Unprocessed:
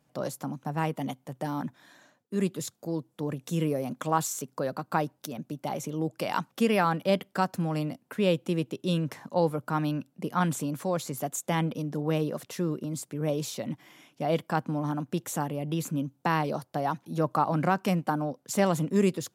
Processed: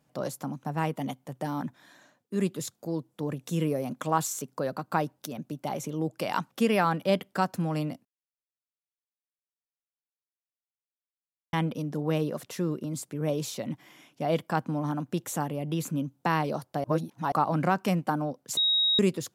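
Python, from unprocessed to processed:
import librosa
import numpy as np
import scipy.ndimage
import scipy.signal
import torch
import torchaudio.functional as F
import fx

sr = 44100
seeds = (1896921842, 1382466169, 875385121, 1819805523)

y = fx.edit(x, sr, fx.silence(start_s=8.05, length_s=3.48),
    fx.reverse_span(start_s=16.84, length_s=0.48),
    fx.bleep(start_s=18.57, length_s=0.42, hz=3790.0, db=-21.0), tone=tone)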